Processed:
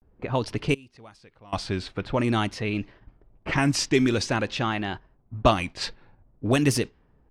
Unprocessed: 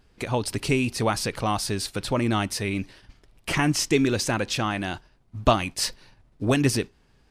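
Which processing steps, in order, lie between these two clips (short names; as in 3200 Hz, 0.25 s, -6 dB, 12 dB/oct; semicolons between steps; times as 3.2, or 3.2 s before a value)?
low-pass opened by the level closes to 790 Hz, open at -17.5 dBFS; vibrato 0.46 Hz 97 cents; 0.74–1.53 flipped gate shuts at -28 dBFS, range -24 dB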